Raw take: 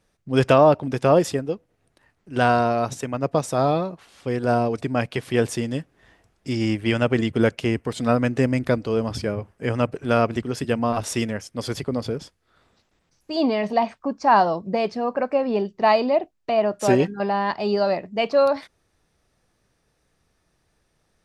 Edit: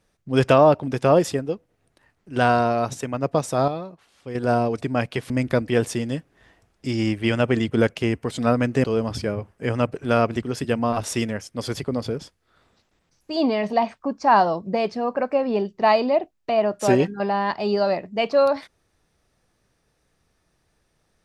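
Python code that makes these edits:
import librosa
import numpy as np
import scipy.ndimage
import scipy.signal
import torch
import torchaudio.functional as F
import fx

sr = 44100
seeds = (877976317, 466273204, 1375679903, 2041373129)

y = fx.edit(x, sr, fx.clip_gain(start_s=3.68, length_s=0.67, db=-8.0),
    fx.move(start_s=8.46, length_s=0.38, to_s=5.3), tone=tone)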